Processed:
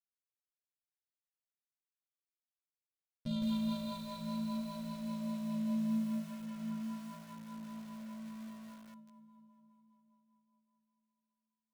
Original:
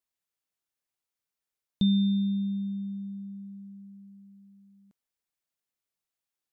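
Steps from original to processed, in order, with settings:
downward compressor 5 to 1, threshold −36 dBFS, peak gain reduction 14 dB
leveller curve on the samples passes 5
flanger 0.75 Hz, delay 0.3 ms, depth 4.3 ms, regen −64%
time stretch by overlap-add 1.8×, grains 36 ms
feedback delay with all-pass diffusion 453 ms, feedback 47%, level −7.5 dB
spring reverb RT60 2.4 s, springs 50 ms, chirp 60 ms, DRR 2 dB
rotating-speaker cabinet horn 5 Hz
feedback echo at a low word length 160 ms, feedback 35%, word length 8 bits, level −3 dB
level −6 dB

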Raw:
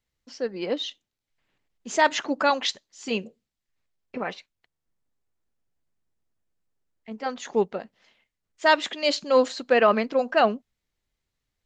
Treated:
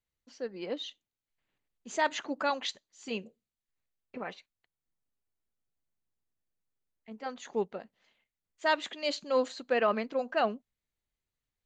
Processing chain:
notch filter 5,300 Hz, Q 9.4
level −8.5 dB

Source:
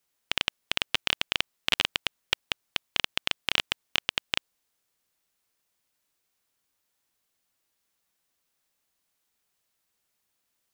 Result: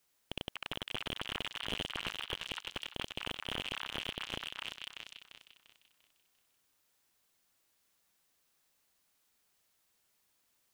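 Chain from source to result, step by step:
feedback delay that plays each chunk backwards 173 ms, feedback 60%, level −13 dB
echo through a band-pass that steps 251 ms, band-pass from 1,200 Hz, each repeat 1.4 octaves, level −11 dB
slew-rate limiting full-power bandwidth 74 Hz
level +2 dB

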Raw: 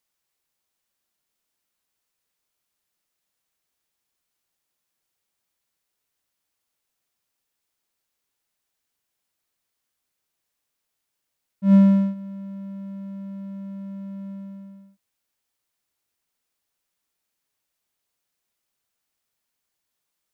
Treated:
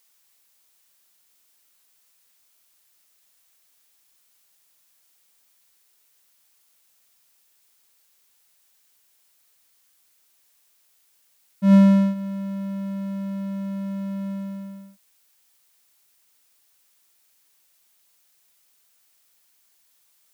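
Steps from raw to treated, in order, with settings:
spectral tilt +2 dB per octave
in parallel at +2 dB: downward compressor, threshold −29 dBFS, peak gain reduction 13 dB
on the sum: level +3 dB

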